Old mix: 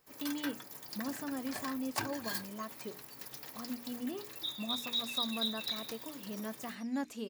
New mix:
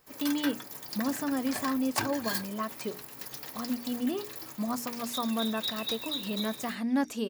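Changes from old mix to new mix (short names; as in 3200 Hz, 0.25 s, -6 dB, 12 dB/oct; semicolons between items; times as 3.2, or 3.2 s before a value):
speech +8.5 dB; first sound +5.5 dB; second sound: entry +0.70 s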